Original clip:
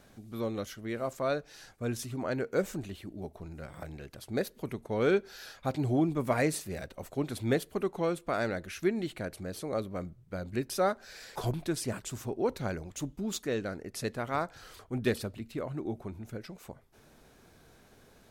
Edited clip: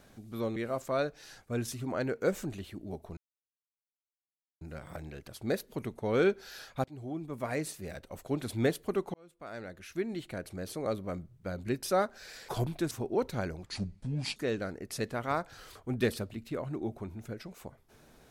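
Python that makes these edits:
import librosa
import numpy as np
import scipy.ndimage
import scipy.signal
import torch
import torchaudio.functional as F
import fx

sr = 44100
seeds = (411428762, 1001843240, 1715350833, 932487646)

y = fx.edit(x, sr, fx.cut(start_s=0.56, length_s=0.31),
    fx.insert_silence(at_s=3.48, length_s=1.44),
    fx.fade_in_from(start_s=5.71, length_s=1.61, floor_db=-19.0),
    fx.fade_in_span(start_s=8.01, length_s=1.55),
    fx.cut(start_s=11.78, length_s=0.4),
    fx.speed_span(start_s=12.93, length_s=0.47, speed=0.67), tone=tone)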